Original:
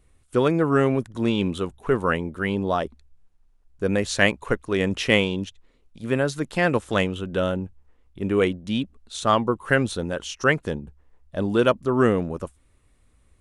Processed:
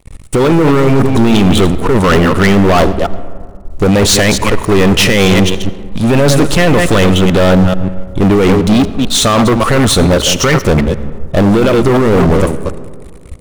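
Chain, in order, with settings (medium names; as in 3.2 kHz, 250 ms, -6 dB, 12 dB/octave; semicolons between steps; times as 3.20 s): chunks repeated in reverse 146 ms, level -11.5 dB; bass shelf 65 Hz +10 dB; band-stop 1.6 kHz, Q 6; compressor with a negative ratio -23 dBFS, ratio -1; waveshaping leveller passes 5; algorithmic reverb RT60 2 s, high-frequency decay 0.35×, pre-delay 45 ms, DRR 14.5 dB; trim +4 dB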